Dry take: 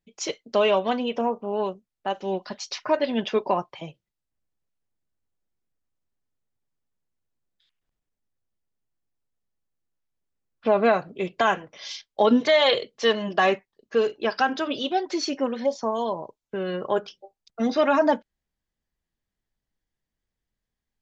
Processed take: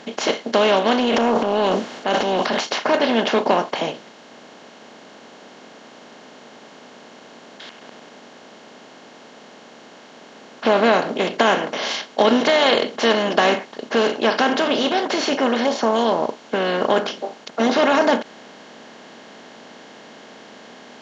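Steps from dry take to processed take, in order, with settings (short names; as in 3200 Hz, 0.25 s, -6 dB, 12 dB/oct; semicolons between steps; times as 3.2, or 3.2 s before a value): per-bin compression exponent 0.4; HPF 100 Hz; 0.99–2.61 transient shaper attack -4 dB, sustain +10 dB; gain -1 dB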